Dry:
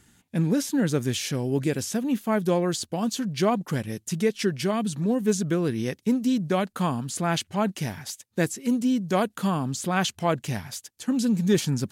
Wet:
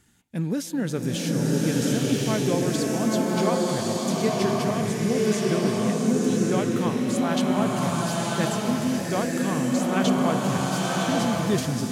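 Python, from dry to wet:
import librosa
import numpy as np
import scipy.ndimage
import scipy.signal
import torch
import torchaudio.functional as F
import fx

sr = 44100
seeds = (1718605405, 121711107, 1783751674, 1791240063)

y = fx.rev_bloom(x, sr, seeds[0], attack_ms=1100, drr_db=-4.5)
y = y * librosa.db_to_amplitude(-3.5)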